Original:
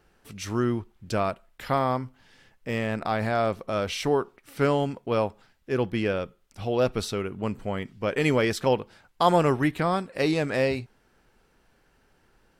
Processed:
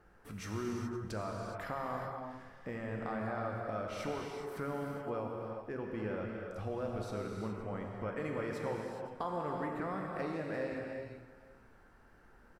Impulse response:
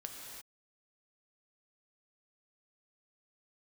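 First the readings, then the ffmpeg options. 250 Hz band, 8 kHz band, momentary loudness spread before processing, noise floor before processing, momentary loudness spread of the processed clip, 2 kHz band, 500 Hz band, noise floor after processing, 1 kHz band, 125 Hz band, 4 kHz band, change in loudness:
-12.0 dB, -14.0 dB, 10 LU, -65 dBFS, 6 LU, -12.5 dB, -13.0 dB, -61 dBFS, -12.5 dB, -12.0 dB, -18.5 dB, -13.0 dB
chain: -filter_complex "[0:a]highshelf=f=2.2k:t=q:w=1.5:g=-8,acompressor=threshold=-41dB:ratio=3,aecho=1:1:515:0.119[a];[1:a]atrim=start_sample=2205,asetrate=36603,aresample=44100[b];[a][b]afir=irnorm=-1:irlink=0,volume=2.5dB"

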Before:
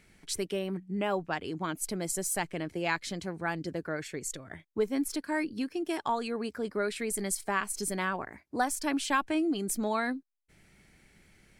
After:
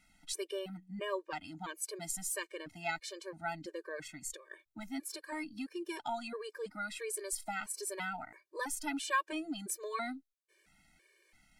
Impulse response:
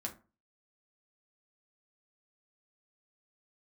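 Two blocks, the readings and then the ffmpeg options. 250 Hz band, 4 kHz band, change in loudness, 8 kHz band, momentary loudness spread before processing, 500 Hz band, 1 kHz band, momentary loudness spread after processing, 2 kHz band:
-11.0 dB, -5.0 dB, -7.0 dB, -4.5 dB, 7 LU, -8.5 dB, -6.5 dB, 8 LU, -5.5 dB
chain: -af "equalizer=f=110:w=0.33:g=-9.5,bandreject=f=60:t=h:w=6,bandreject=f=120:t=h:w=6,afftfilt=real='re*gt(sin(2*PI*1.5*pts/sr)*(1-2*mod(floor(b*sr/1024/310),2)),0)':imag='im*gt(sin(2*PI*1.5*pts/sr)*(1-2*mod(floor(b*sr/1024/310),2)),0)':win_size=1024:overlap=0.75,volume=-1.5dB"

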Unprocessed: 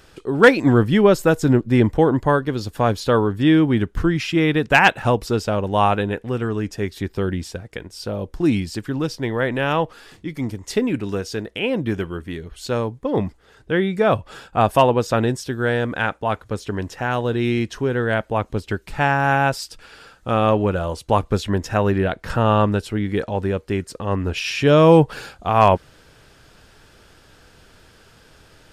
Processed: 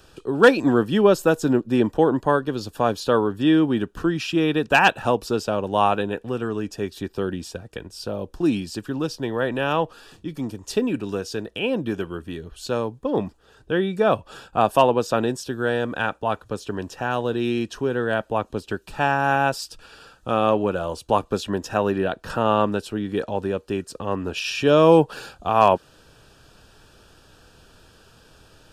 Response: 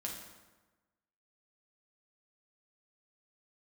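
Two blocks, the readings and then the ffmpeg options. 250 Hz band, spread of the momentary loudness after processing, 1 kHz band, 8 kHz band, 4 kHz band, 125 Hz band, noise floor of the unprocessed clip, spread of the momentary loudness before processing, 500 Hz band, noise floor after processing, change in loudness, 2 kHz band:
-3.0 dB, 13 LU, -1.5 dB, -1.5 dB, -1.5 dB, -8.0 dB, -52 dBFS, 13 LU, -1.5 dB, -54 dBFS, -2.5 dB, -3.5 dB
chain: -filter_complex "[0:a]acrossover=split=180|1300[a][b][c];[a]acompressor=threshold=-36dB:ratio=6[d];[c]asuperstop=centerf=2100:order=12:qfactor=5.5[e];[d][b][e]amix=inputs=3:normalize=0,volume=-1.5dB"

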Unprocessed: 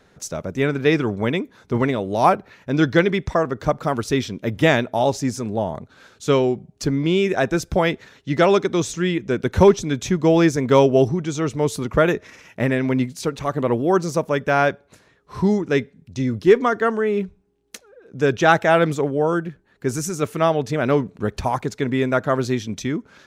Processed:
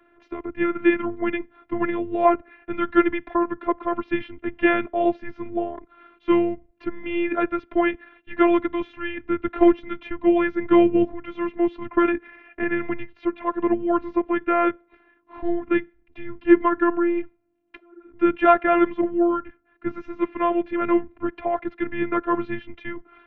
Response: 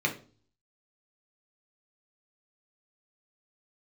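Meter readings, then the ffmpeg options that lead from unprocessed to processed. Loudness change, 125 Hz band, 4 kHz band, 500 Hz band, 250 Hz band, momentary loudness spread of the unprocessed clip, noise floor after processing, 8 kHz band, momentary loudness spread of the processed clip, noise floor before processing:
-2.5 dB, -20.0 dB, under -10 dB, -5.0 dB, 0.0 dB, 10 LU, -62 dBFS, under -40 dB, 14 LU, -58 dBFS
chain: -af "highpass=f=250:t=q:w=0.5412,highpass=f=250:t=q:w=1.307,lowpass=f=2.8k:t=q:w=0.5176,lowpass=f=2.8k:t=q:w=0.7071,lowpass=f=2.8k:t=q:w=1.932,afreqshift=-140,afftfilt=real='hypot(re,im)*cos(PI*b)':imag='0':win_size=512:overlap=0.75,volume=2.5dB"

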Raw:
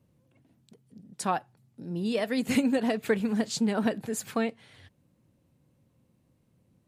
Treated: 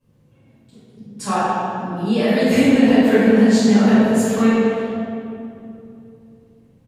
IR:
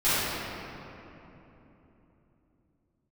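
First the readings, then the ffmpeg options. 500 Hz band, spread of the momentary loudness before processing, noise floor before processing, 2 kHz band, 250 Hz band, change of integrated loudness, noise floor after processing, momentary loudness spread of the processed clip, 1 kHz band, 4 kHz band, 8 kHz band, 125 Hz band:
+13.0 dB, 8 LU, -69 dBFS, +11.5 dB, +14.5 dB, +13.0 dB, -55 dBFS, 15 LU, +12.0 dB, +9.5 dB, +7.0 dB, +14.0 dB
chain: -filter_complex "[0:a]asplit=2[a][b];[b]adelay=150,highpass=300,lowpass=3.4k,asoftclip=type=hard:threshold=-21.5dB,volume=-12dB[c];[a][c]amix=inputs=2:normalize=0[d];[1:a]atrim=start_sample=2205,asetrate=57330,aresample=44100[e];[d][e]afir=irnorm=-1:irlink=0,volume=-3.5dB"

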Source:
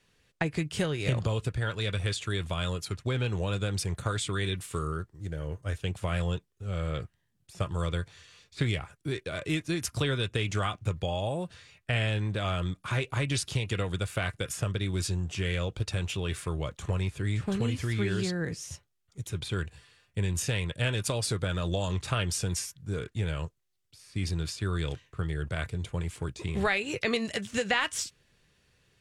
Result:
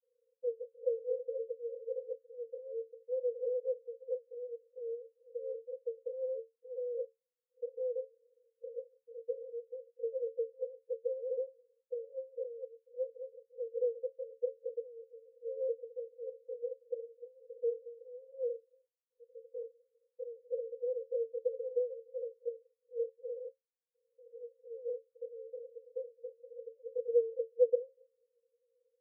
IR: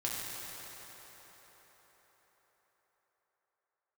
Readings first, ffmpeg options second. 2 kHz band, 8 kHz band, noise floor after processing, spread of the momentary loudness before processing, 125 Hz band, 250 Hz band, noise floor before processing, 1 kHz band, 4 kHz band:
under -40 dB, under -40 dB, under -85 dBFS, 7 LU, under -40 dB, under -40 dB, -73 dBFS, under -40 dB, under -40 dB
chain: -af "asuperpass=centerf=490:order=20:qfactor=6.2,volume=5.5dB"

